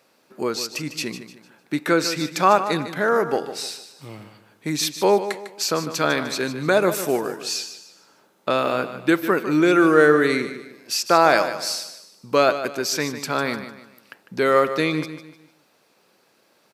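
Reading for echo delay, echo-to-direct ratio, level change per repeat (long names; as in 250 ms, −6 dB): 151 ms, −11.0 dB, −9.0 dB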